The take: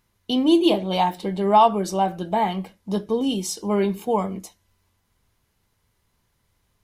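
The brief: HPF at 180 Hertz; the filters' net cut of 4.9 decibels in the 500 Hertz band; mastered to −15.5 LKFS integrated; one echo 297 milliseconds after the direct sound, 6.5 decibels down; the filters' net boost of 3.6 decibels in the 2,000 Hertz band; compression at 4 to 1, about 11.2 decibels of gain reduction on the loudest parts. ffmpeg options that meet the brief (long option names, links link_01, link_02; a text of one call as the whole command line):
ffmpeg -i in.wav -af "highpass=180,equalizer=frequency=500:width_type=o:gain=-7.5,equalizer=frequency=2000:width_type=o:gain=5,acompressor=threshold=-25dB:ratio=4,aecho=1:1:297:0.473,volume=13.5dB" out.wav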